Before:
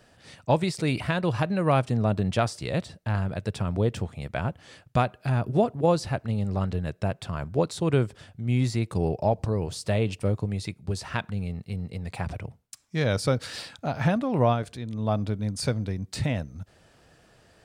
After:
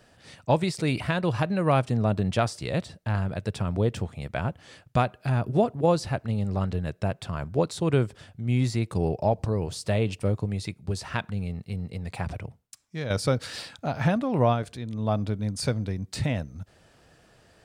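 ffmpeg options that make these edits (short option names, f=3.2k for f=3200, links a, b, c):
-filter_complex "[0:a]asplit=2[a][b];[a]atrim=end=13.1,asetpts=PTS-STARTPTS,afade=t=out:st=12.36:d=0.74:silence=0.375837[c];[b]atrim=start=13.1,asetpts=PTS-STARTPTS,afade=t=in:d=0.004:c=hsin:silence=0.375837[d];[c][d]concat=n=2:v=0:a=1"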